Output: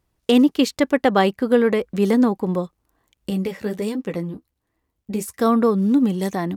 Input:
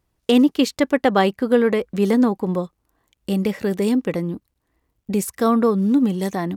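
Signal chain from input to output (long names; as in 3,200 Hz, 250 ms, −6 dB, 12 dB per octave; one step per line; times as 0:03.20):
0:03.30–0:05.39: flanger 1.4 Hz, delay 8.7 ms, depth 5.8 ms, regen −29%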